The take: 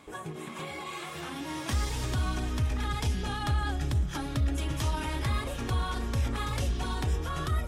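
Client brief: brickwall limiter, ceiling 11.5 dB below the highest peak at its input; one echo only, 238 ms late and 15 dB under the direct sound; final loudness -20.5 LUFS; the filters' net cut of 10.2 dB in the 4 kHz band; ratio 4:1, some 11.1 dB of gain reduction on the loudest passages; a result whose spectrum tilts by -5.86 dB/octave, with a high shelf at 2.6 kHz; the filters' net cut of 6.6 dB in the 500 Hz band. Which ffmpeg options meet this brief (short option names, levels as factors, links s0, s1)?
-af "equalizer=f=500:t=o:g=-8.5,highshelf=f=2600:g=-8.5,equalizer=f=4000:t=o:g=-6,acompressor=threshold=0.0126:ratio=4,alimiter=level_in=6.31:limit=0.0631:level=0:latency=1,volume=0.158,aecho=1:1:238:0.178,volume=23.7"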